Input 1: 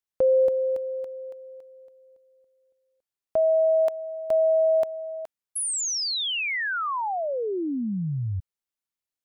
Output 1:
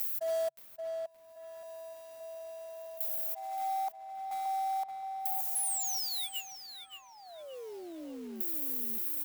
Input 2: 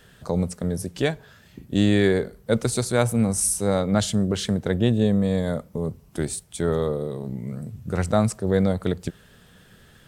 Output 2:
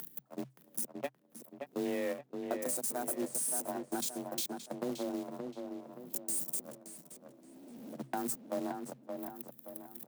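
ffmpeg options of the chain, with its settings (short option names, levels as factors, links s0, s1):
-filter_complex "[0:a]aeval=exprs='val(0)+0.5*0.0794*sgn(val(0))':c=same,aemphasis=mode=production:type=50fm,afwtdn=0.0562,agate=range=0.00316:threshold=0.141:ratio=16:release=45:detection=rms,equalizer=f=180:t=o:w=0.83:g=-3.5,acompressor=mode=upward:threshold=0.0282:ratio=4:attack=1.4:release=625:knee=2.83:detection=peak,alimiter=limit=0.316:level=0:latency=1:release=28,acompressor=threshold=0.0316:ratio=8:attack=2.8:release=359:knee=1:detection=rms,afreqshift=130,acrusher=bits=4:mode=log:mix=0:aa=0.000001,asplit=2[s0][s1];[s1]adelay=573,lowpass=f=3000:p=1,volume=0.531,asplit=2[s2][s3];[s3]adelay=573,lowpass=f=3000:p=1,volume=0.43,asplit=2[s4][s5];[s5]adelay=573,lowpass=f=3000:p=1,volume=0.43,asplit=2[s6][s7];[s7]adelay=573,lowpass=f=3000:p=1,volume=0.43,asplit=2[s8][s9];[s9]adelay=573,lowpass=f=3000:p=1,volume=0.43[s10];[s2][s4][s6][s8][s10]amix=inputs=5:normalize=0[s11];[s0][s11]amix=inputs=2:normalize=0"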